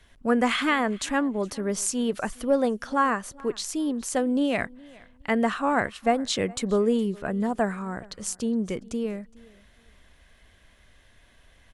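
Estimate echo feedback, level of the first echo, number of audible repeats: no regular repeats, -24.0 dB, 1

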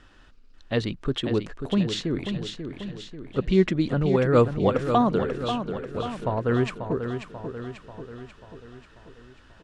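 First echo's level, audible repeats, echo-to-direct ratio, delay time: -8.0 dB, 6, -6.5 dB, 539 ms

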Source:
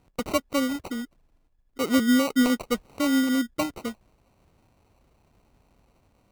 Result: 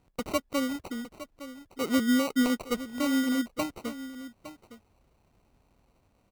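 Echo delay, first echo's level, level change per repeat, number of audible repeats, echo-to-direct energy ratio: 861 ms, -14.0 dB, no regular repeats, 1, -14.0 dB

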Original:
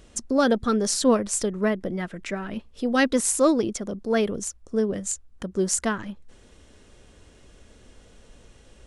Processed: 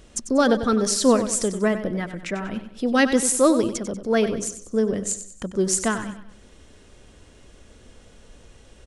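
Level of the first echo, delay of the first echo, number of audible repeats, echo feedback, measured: -11.0 dB, 95 ms, 4, 41%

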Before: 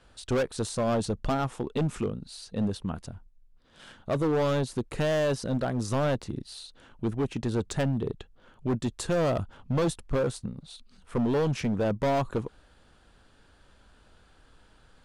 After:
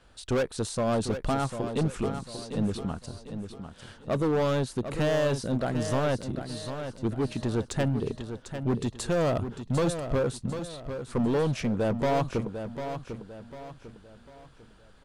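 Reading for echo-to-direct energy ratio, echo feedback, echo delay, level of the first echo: -8.5 dB, 38%, 748 ms, -9.0 dB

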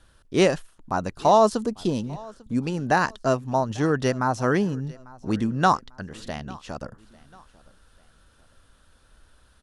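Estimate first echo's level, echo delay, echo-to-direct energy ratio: -23.0 dB, 846 ms, -22.5 dB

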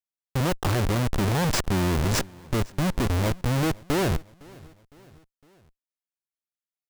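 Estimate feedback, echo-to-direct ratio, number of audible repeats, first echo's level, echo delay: 54%, -22.5 dB, 3, -24.0 dB, 509 ms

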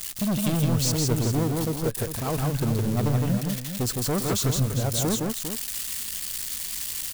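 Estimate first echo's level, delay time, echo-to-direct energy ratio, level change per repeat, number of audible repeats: -19.5 dB, 125 ms, -2.0 dB, no regular repeats, 3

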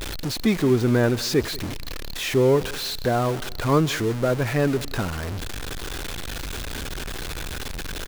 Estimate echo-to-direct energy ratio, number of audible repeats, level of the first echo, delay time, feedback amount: -20.5 dB, 2, -21.0 dB, 186 ms, 32%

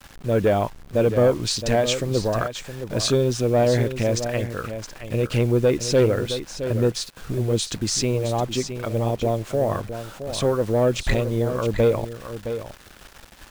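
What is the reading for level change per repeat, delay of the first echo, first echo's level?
no regular repeats, 667 ms, -10.0 dB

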